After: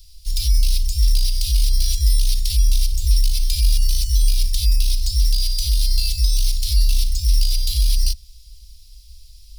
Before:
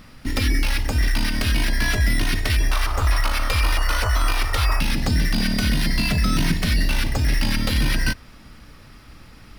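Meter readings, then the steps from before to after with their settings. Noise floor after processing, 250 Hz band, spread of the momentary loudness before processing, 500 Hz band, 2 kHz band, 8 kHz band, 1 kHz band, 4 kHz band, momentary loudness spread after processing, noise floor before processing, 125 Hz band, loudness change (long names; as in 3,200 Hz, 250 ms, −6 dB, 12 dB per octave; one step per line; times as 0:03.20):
−44 dBFS, below −25 dB, 2 LU, below −40 dB, −20.0 dB, +5.5 dB, below −40 dB, +2.0 dB, 2 LU, −45 dBFS, +0.5 dB, +1.5 dB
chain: inverse Chebyshev band-stop filter 180–1,400 Hz, stop band 60 dB
level +5.5 dB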